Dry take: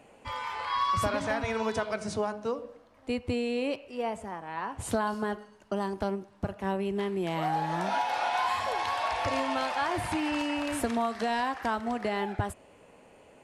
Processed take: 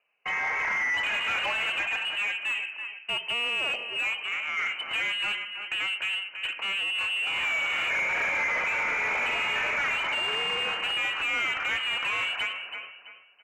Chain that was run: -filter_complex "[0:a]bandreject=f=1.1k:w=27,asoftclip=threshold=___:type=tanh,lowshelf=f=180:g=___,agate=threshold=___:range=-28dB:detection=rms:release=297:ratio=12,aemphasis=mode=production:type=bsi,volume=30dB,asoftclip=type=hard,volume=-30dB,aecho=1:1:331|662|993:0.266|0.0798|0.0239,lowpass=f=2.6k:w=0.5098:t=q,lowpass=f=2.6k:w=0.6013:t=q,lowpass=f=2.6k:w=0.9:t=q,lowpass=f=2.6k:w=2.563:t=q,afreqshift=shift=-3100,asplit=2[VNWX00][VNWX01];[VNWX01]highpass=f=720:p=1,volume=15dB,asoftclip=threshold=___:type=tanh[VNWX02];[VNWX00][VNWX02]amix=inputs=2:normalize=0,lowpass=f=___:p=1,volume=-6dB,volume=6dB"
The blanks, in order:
-17.5dB, 11.5, -43dB, -21dB, 1.2k